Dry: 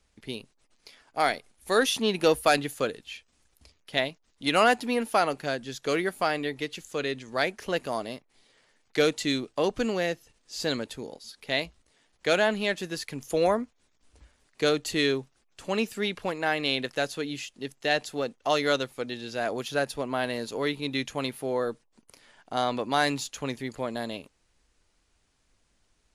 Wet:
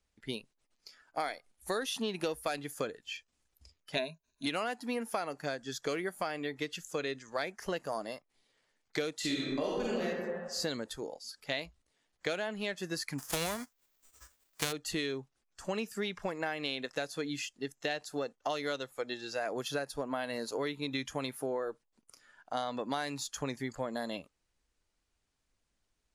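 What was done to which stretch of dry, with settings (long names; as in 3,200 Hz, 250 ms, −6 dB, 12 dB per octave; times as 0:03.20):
0:03.95–0:04.46: EQ curve with evenly spaced ripples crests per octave 1.5, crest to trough 16 dB
0:09.19–0:10.04: thrown reverb, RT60 1.2 s, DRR −6 dB
0:13.18–0:14.71: spectral envelope flattened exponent 0.3
whole clip: noise reduction from a noise print of the clip's start 11 dB; downward compressor 8 to 1, threshold −31 dBFS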